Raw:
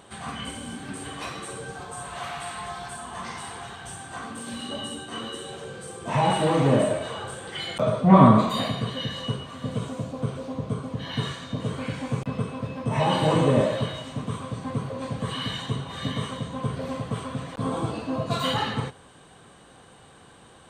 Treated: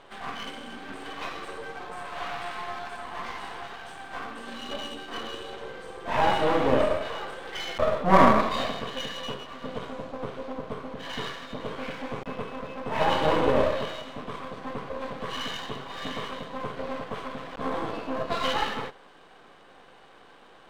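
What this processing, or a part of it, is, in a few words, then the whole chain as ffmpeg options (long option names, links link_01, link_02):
crystal radio: -af "highpass=330,lowpass=3200,aeval=exprs='if(lt(val(0),0),0.251*val(0),val(0))':channel_layout=same,volume=4dB"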